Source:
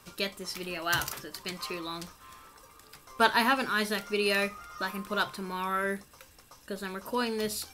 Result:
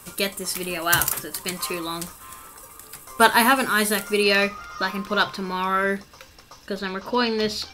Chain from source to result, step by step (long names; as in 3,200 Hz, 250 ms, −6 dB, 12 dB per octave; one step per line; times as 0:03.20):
high shelf with overshoot 6,800 Hz +7 dB, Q 1.5, from 0:04.23 −6 dB, from 0:06.79 −13.5 dB
level +8 dB